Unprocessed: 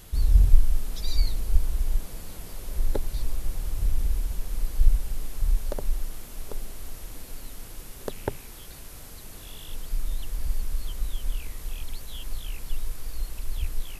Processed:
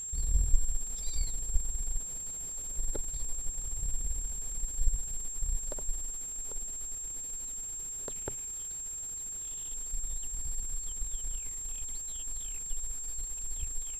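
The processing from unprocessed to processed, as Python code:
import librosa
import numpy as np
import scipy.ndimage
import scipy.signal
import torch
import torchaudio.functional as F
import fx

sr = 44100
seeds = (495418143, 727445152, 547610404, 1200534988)

y = np.where(x < 0.0, 10.0 ** (-7.0 / 20.0) * x, x)
y = y + 10.0 ** (-28.0 / 20.0) * np.sin(2.0 * np.pi * 7500.0 * np.arange(len(y)) / sr)
y = y * 10.0 ** (-8.5 / 20.0)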